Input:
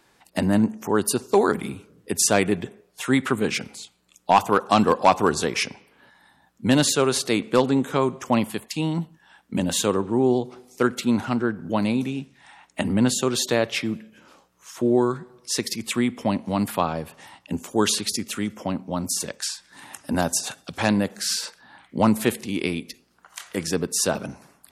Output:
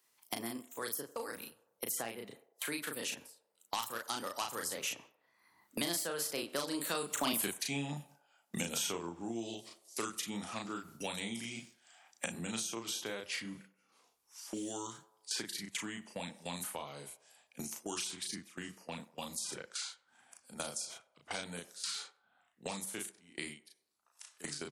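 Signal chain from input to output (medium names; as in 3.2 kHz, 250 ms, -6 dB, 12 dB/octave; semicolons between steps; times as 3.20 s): Doppler pass-by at 7.40 s, 45 m/s, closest 3.7 m; gate with hold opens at -58 dBFS; RIAA curve recording; in parallel at -5 dB: saturation -26 dBFS, distortion -10 dB; on the sum: bass shelf 120 Hz +8 dB; doubling 35 ms -3 dB; on a send: band-passed feedback delay 95 ms, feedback 43%, band-pass 720 Hz, level -20.5 dB; on the sum: three bands compressed up and down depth 100%; trim +6.5 dB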